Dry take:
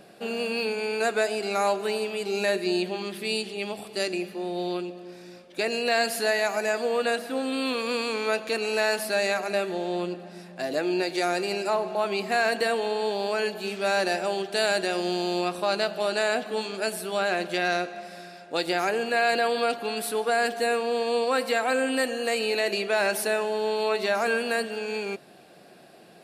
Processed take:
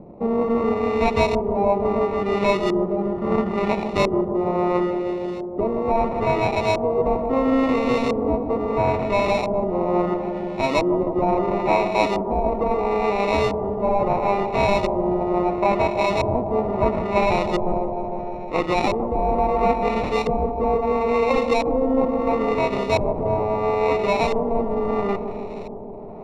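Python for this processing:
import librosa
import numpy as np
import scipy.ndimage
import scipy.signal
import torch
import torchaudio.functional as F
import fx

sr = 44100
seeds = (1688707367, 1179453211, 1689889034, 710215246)

y = fx.high_shelf(x, sr, hz=4400.0, db=-9.0)
y = fx.rider(y, sr, range_db=10, speed_s=0.5)
y = fx.graphic_eq_15(y, sr, hz=(400, 2500, 10000), db=(-4, -11, 6))
y = fx.sample_hold(y, sr, seeds[0], rate_hz=1600.0, jitter_pct=0)
y = fx.filter_lfo_lowpass(y, sr, shape='saw_up', hz=0.74, low_hz=410.0, high_hz=4400.0, q=0.88)
y = fx.echo_bbd(y, sr, ms=155, stages=1024, feedback_pct=81, wet_db=-8.5)
y = y * librosa.db_to_amplitude(8.0)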